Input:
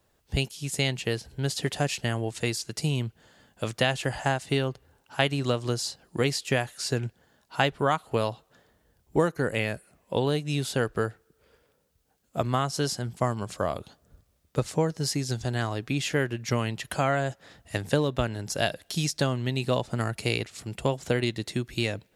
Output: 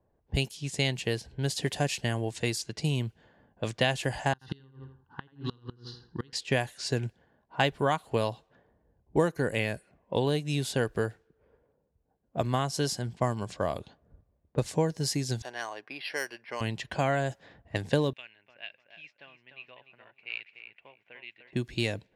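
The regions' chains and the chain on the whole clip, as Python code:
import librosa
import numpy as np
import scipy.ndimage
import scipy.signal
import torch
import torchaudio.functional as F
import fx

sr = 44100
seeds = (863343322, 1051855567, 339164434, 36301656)

y = fx.chain(x, sr, fx.echo_feedback(ms=82, feedback_pct=38, wet_db=-7.0),
    fx.gate_flip(shuts_db=-15.0, range_db=-27),
    fx.fixed_phaser(hz=2300.0, stages=6), at=(4.33, 6.33))
y = fx.chain(y, sr, fx.highpass(hz=700.0, slope=12),
    fx.resample_bad(factor=6, down='filtered', up='hold'), at=(15.42, 16.61))
y = fx.chain(y, sr, fx.bandpass_q(hz=2500.0, q=5.2),
    fx.echo_feedback(ms=299, feedback_pct=28, wet_db=-7), at=(18.13, 21.53))
y = fx.notch(y, sr, hz=1300.0, q=6.3)
y = fx.env_lowpass(y, sr, base_hz=910.0, full_db=-25.5)
y = y * librosa.db_to_amplitude(-1.5)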